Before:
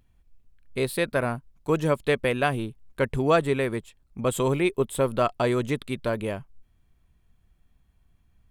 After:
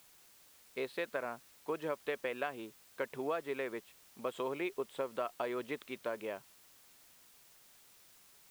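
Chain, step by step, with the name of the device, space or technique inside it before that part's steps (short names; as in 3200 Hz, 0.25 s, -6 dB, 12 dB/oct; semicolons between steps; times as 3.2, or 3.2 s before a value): baby monitor (BPF 390–3200 Hz; compressor, threshold -25 dBFS, peak gain reduction 9.5 dB; white noise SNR 21 dB); gain -7.5 dB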